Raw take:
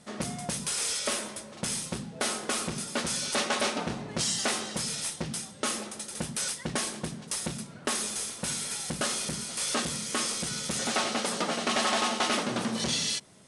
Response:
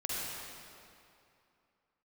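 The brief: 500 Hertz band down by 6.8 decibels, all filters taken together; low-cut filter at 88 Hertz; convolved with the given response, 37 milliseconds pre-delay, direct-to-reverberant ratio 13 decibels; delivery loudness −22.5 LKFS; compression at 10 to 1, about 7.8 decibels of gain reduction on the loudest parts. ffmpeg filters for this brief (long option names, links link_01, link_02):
-filter_complex "[0:a]highpass=88,equalizer=frequency=500:width_type=o:gain=-9,acompressor=threshold=-33dB:ratio=10,asplit=2[link_01][link_02];[1:a]atrim=start_sample=2205,adelay=37[link_03];[link_02][link_03]afir=irnorm=-1:irlink=0,volume=-18dB[link_04];[link_01][link_04]amix=inputs=2:normalize=0,volume=13dB"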